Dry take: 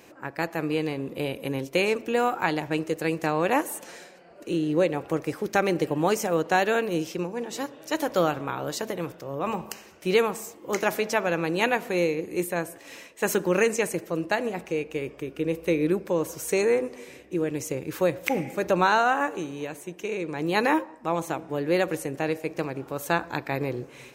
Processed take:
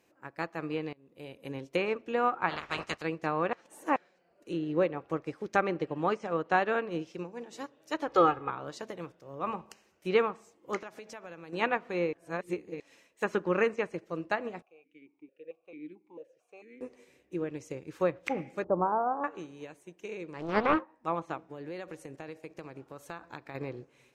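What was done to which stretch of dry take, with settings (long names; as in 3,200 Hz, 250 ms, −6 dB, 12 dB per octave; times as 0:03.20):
0:00.93–0:01.53: fade in, from −19 dB
0:02.49–0:03.01: ceiling on every frequency bin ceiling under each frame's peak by 28 dB
0:03.53–0:03.96: reverse
0:05.71–0:06.52: elliptic low-pass filter 9,100 Hz
0:08.08–0:08.50: comb filter 2.4 ms, depth 88%
0:10.80–0:11.53: downward compressor 4 to 1, threshold −31 dBFS
0:12.13–0:12.80: reverse
0:14.62–0:16.81: formant filter that steps through the vowels 4.5 Hz
0:18.64–0:19.24: inverse Chebyshev low-pass filter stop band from 2,500 Hz, stop band 50 dB
0:20.33–0:20.91: highs frequency-modulated by the lows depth 0.58 ms
0:21.41–0:23.55: downward compressor 5 to 1, threshold −27 dBFS
whole clip: dynamic equaliser 1,200 Hz, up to +7 dB, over −44 dBFS, Q 3.4; treble cut that deepens with the level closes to 2,700 Hz, closed at −20.5 dBFS; expander for the loud parts 1.5 to 1, over −45 dBFS; level −3 dB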